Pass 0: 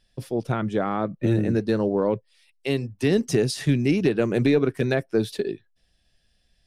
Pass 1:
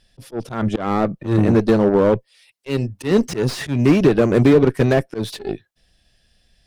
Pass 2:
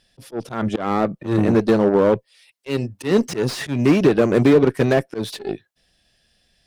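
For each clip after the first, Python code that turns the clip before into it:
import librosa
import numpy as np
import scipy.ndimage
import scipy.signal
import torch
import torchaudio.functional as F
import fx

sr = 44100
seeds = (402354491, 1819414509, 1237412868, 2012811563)

y1 = fx.cheby_harmonics(x, sr, harmonics=(8,), levels_db=(-22,), full_scale_db=-9.0)
y1 = fx.auto_swell(y1, sr, attack_ms=158.0)
y1 = fx.slew_limit(y1, sr, full_power_hz=81.0)
y1 = F.gain(torch.from_numpy(y1), 7.5).numpy()
y2 = fx.low_shelf(y1, sr, hz=91.0, db=-11.0)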